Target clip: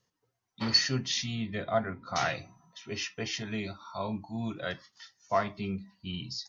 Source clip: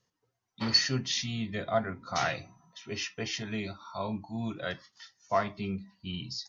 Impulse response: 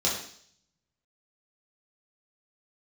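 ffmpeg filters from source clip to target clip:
-filter_complex "[0:a]asettb=1/sr,asplit=3[link_01][link_02][link_03];[link_01]atrim=end=1.354[link_04];[link_02]atrim=start=1.35:end=2.16,asetpts=PTS-STARTPTS,afade=type=in:duration=0.004:curve=qsin,afade=type=out:start_time=0.806:duration=0.004:curve=qsin,lowpass=4400[link_05];[link_03]atrim=start=2.156[link_06];[link_04][link_05]acrossfade=duration=0.004:curve1=hsin:curve2=qsin[link_07];[link_07][link_06]acrossfade=duration=0.004:curve1=qsin:curve2=hsin"

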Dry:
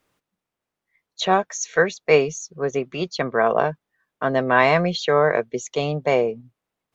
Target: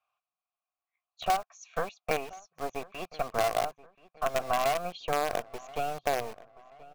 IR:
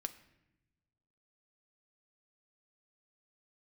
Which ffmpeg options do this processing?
-filter_complex "[0:a]asplit=3[link_01][link_02][link_03];[link_01]bandpass=frequency=730:width_type=q:width=8,volume=0dB[link_04];[link_02]bandpass=frequency=1090:width_type=q:width=8,volume=-6dB[link_05];[link_03]bandpass=frequency=2440:width_type=q:width=8,volume=-9dB[link_06];[link_04][link_05][link_06]amix=inputs=3:normalize=0,equalizer=frequency=2500:width=0.66:gain=-3,acrossover=split=120|820[link_07][link_08][link_09];[link_08]acrusher=bits=5:dc=4:mix=0:aa=0.000001[link_10];[link_07][link_10][link_09]amix=inputs=3:normalize=0,acompressor=threshold=-31dB:ratio=4,asplit=2[link_11][link_12];[link_12]adelay=1030,lowpass=frequency=3000:poles=1,volume=-20dB,asplit=2[link_13][link_14];[link_14]adelay=1030,lowpass=frequency=3000:poles=1,volume=0.46,asplit=2[link_15][link_16];[link_16]adelay=1030,lowpass=frequency=3000:poles=1,volume=0.46[link_17];[link_11][link_13][link_15][link_17]amix=inputs=4:normalize=0,volume=6dB"

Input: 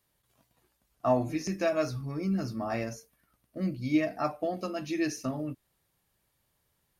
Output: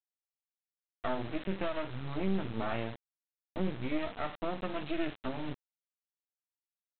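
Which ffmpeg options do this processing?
ffmpeg -i in.wav -af "alimiter=level_in=2dB:limit=-24dB:level=0:latency=1:release=471,volume=-2dB,acontrast=80,aresample=8000,acrusher=bits=4:dc=4:mix=0:aa=0.000001,aresample=44100,volume=-2dB" out.wav

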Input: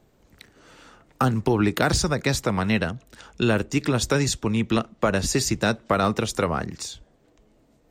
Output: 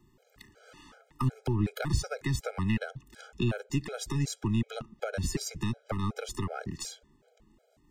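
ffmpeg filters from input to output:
ffmpeg -i in.wav -filter_complex "[0:a]aeval=exprs='if(lt(val(0),0),0.708*val(0),val(0))':channel_layout=same,acrossover=split=170[link_01][link_02];[link_02]acompressor=threshold=-30dB:ratio=6[link_03];[link_01][link_03]amix=inputs=2:normalize=0,afftfilt=real='re*gt(sin(2*PI*2.7*pts/sr)*(1-2*mod(floor(b*sr/1024/420),2)),0)':imag='im*gt(sin(2*PI*2.7*pts/sr)*(1-2*mod(floor(b*sr/1024/420),2)),0)':win_size=1024:overlap=0.75" out.wav

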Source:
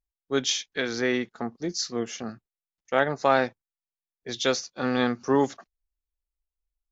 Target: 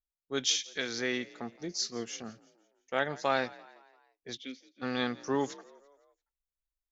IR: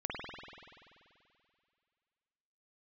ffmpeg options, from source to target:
-filter_complex "[0:a]asplit=3[link_01][link_02][link_03];[link_01]afade=type=out:start_time=4.36:duration=0.02[link_04];[link_02]asplit=3[link_05][link_06][link_07];[link_05]bandpass=frequency=270:width_type=q:width=8,volume=0dB[link_08];[link_06]bandpass=frequency=2290:width_type=q:width=8,volume=-6dB[link_09];[link_07]bandpass=frequency=3010:width_type=q:width=8,volume=-9dB[link_10];[link_08][link_09][link_10]amix=inputs=3:normalize=0,afade=type=in:start_time=4.36:duration=0.02,afade=type=out:start_time=4.81:duration=0.02[link_11];[link_03]afade=type=in:start_time=4.81:duration=0.02[link_12];[link_04][link_11][link_12]amix=inputs=3:normalize=0,asplit=5[link_13][link_14][link_15][link_16][link_17];[link_14]adelay=170,afreqshift=49,volume=-21.5dB[link_18];[link_15]adelay=340,afreqshift=98,volume=-27.2dB[link_19];[link_16]adelay=510,afreqshift=147,volume=-32.9dB[link_20];[link_17]adelay=680,afreqshift=196,volume=-38.5dB[link_21];[link_13][link_18][link_19][link_20][link_21]amix=inputs=5:normalize=0,adynamicequalizer=threshold=0.01:dfrequency=1900:dqfactor=0.7:tfrequency=1900:tqfactor=0.7:attack=5:release=100:ratio=0.375:range=3.5:mode=boostabove:tftype=highshelf,volume=-8.5dB"

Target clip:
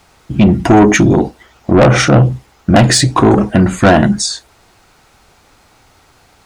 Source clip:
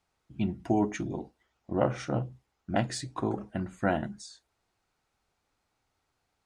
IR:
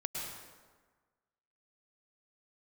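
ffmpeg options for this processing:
-af "asoftclip=type=tanh:threshold=-27dB,alimiter=level_in=31dB:limit=-1dB:release=50:level=0:latency=1,volume=-1.5dB"

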